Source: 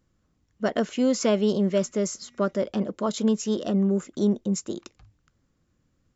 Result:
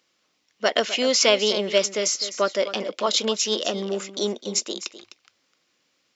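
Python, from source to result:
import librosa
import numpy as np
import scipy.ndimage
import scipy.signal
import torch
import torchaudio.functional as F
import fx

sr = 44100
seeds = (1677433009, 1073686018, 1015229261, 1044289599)

y = scipy.signal.sosfilt(scipy.signal.butter(2, 510.0, 'highpass', fs=sr, output='sos'), x)
y = fx.band_shelf(y, sr, hz=3500.0, db=9.5, octaves=1.7)
y = y + 10.0 ** (-13.5 / 20.0) * np.pad(y, (int(255 * sr / 1000.0), 0))[:len(y)]
y = y * librosa.db_to_amplitude(6.0)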